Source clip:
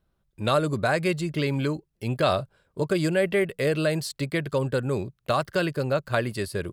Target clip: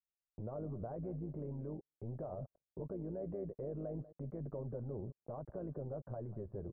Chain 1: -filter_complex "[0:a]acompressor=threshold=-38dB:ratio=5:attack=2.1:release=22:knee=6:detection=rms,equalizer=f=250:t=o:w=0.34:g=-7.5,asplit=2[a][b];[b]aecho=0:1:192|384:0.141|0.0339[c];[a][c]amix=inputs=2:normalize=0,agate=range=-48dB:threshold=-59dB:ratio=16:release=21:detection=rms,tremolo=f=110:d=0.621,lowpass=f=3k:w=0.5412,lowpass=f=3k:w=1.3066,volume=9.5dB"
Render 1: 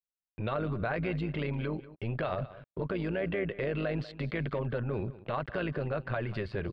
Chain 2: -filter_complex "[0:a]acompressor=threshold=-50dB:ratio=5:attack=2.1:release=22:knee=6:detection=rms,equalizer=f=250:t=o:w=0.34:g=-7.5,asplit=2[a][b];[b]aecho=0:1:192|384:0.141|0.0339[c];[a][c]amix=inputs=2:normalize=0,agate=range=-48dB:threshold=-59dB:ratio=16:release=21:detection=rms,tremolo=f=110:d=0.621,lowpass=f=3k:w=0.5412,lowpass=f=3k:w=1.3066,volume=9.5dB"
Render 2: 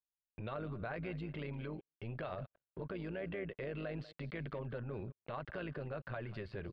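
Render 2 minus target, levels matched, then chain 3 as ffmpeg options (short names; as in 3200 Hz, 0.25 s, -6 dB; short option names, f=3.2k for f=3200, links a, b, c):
1000 Hz band +5.0 dB
-filter_complex "[0:a]acompressor=threshold=-50dB:ratio=5:attack=2.1:release=22:knee=6:detection=rms,equalizer=f=250:t=o:w=0.34:g=-7.5,asplit=2[a][b];[b]aecho=0:1:192|384:0.141|0.0339[c];[a][c]amix=inputs=2:normalize=0,agate=range=-48dB:threshold=-59dB:ratio=16:release=21:detection=rms,tremolo=f=110:d=0.621,lowpass=f=780:w=0.5412,lowpass=f=780:w=1.3066,volume=9.5dB"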